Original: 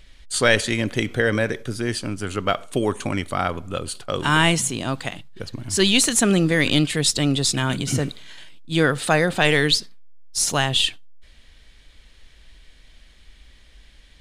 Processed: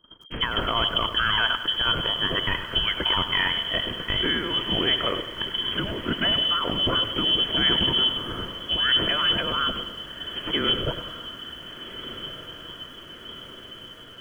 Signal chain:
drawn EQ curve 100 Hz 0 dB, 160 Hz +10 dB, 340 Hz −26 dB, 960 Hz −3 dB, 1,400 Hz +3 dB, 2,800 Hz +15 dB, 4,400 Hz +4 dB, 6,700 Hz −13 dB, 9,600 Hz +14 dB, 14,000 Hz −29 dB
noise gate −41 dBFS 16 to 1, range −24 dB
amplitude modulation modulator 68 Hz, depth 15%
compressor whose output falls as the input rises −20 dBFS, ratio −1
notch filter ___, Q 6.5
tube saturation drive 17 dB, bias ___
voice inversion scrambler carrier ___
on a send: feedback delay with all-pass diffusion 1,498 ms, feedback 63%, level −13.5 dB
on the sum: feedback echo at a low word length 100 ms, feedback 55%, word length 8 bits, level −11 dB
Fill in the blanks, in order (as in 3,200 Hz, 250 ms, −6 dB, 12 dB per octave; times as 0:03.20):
2,400 Hz, 0.25, 3,200 Hz